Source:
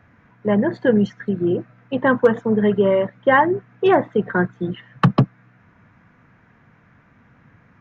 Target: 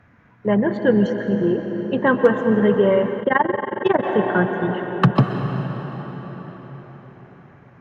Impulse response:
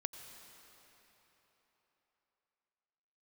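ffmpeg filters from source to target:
-filter_complex "[1:a]atrim=start_sample=2205,asetrate=30429,aresample=44100[a];[0:a][a]afir=irnorm=-1:irlink=0,asplit=3[b][c][d];[b]afade=t=out:st=3.2:d=0.02[e];[c]tremolo=f=22:d=0.947,afade=t=in:st=3.2:d=0.02,afade=t=out:st=4.02:d=0.02[f];[d]afade=t=in:st=4.02:d=0.02[g];[e][f][g]amix=inputs=3:normalize=0"

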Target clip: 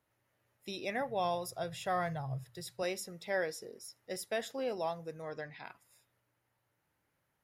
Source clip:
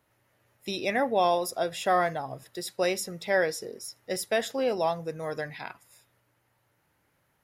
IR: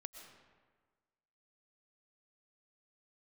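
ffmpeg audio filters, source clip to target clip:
-filter_complex "[0:a]asettb=1/sr,asplit=3[a][b][c];[a]atrim=end=1.014[d];[b]atrim=start=1.01:end=2.83,asetpts=PTS-STARTPTS,afade=t=in:d=0.004:c=qsin,afade=t=out:st=1.816:d=0.004:c=qsin,lowshelf=f=180:t=q:w=3:g=9.5[e];[c]atrim=start=2.826[f];[d][e]acrossfade=d=0.004:c1=hsin:c2=qsin[g];[g][f]acrossfade=d=0.004:c1=qsin:c2=hsin,asettb=1/sr,asplit=3[h][i][j];[h]atrim=end=5.224[k];[i]atrim=start=5.22:end=5.64,asetpts=PTS-STARTPTS,afade=t=in:d=0.004:c=qsin,afade=t=out:st=0.416:d=0.004:c=qsin,lowpass=5.5k[l];[j]atrim=start=5.636[m];[k][l]acrossfade=d=0.004:c1=hsin:c2=qsin[n];[n][m]acrossfade=d=0.004:c1=qsin:c2=hsin,volume=-9dB"

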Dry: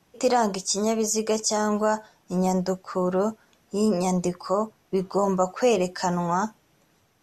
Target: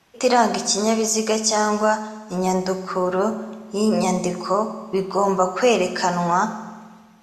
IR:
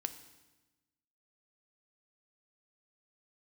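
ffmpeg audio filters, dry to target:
-filter_complex "[0:a]equalizer=f=2.2k:w=0.32:g=8[a];[1:a]atrim=start_sample=2205,asetrate=34839,aresample=44100[b];[a][b]afir=irnorm=-1:irlink=0"

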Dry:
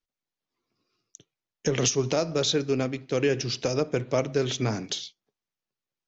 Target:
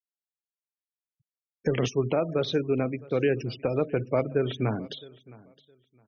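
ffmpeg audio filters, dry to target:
-filter_complex "[0:a]lowpass=2.7k,afftfilt=real='re*gte(hypot(re,im),0.02)':imag='im*gte(hypot(re,im),0.02)':win_size=1024:overlap=0.75,asplit=2[a][b];[b]aecho=0:1:664|1328:0.0794|0.0167[c];[a][c]amix=inputs=2:normalize=0"

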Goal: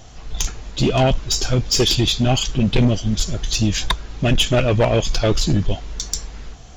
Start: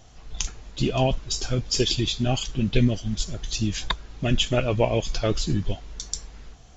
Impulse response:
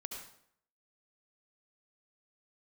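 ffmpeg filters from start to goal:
-af "asoftclip=type=tanh:threshold=-18.5dB,volume=9dB"

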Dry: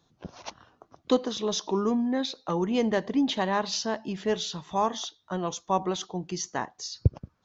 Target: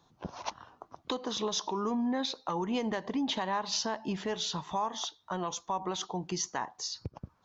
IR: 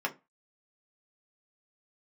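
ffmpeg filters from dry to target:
-filter_complex "[0:a]equalizer=f=940:t=o:w=0.78:g=8,acompressor=threshold=-25dB:ratio=6,acrossover=split=1400[a][b];[a]alimiter=level_in=1dB:limit=-24dB:level=0:latency=1:release=144,volume=-1dB[c];[c][b]amix=inputs=2:normalize=0"

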